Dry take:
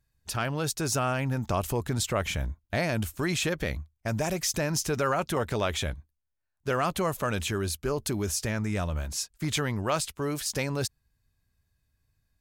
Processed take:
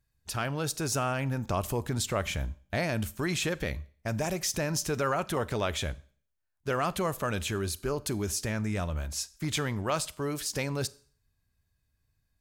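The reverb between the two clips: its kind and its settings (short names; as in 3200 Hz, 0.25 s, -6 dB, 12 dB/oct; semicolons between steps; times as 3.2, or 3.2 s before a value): Schroeder reverb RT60 0.48 s, combs from 29 ms, DRR 19 dB; gain -2 dB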